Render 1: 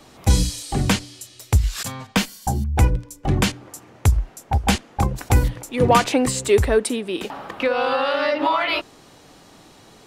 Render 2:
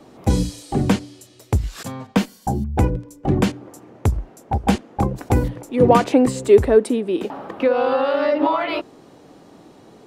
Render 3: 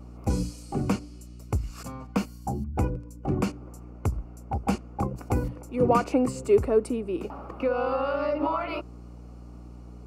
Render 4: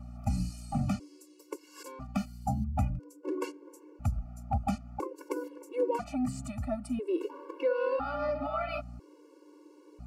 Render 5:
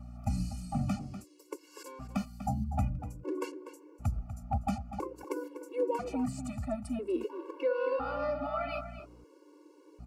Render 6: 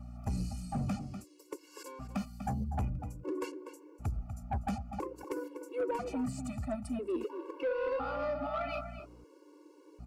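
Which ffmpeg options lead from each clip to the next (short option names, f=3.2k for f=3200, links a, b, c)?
-af "equalizer=f=330:w=0.33:g=14,volume=-8.5dB"
-af "superequalizer=10b=1.58:11b=0.447:13b=0.316,aeval=exprs='val(0)+0.02*(sin(2*PI*60*n/s)+sin(2*PI*2*60*n/s)/2+sin(2*PI*3*60*n/s)/3+sin(2*PI*4*60*n/s)/4+sin(2*PI*5*60*n/s)/5)':c=same,volume=-8.5dB"
-af "alimiter=limit=-18dB:level=0:latency=1:release=295,afftfilt=real='re*gt(sin(2*PI*0.5*pts/sr)*(1-2*mod(floor(b*sr/1024/290),2)),0)':imag='im*gt(sin(2*PI*0.5*pts/sr)*(1-2*mod(floor(b*sr/1024/290),2)),0)':win_size=1024:overlap=0.75"
-filter_complex "[0:a]asplit=2[a][b];[b]adelay=244.9,volume=-11dB,highshelf=f=4k:g=-5.51[c];[a][c]amix=inputs=2:normalize=0,volume=-1.5dB"
-af "asoftclip=type=tanh:threshold=-27dB"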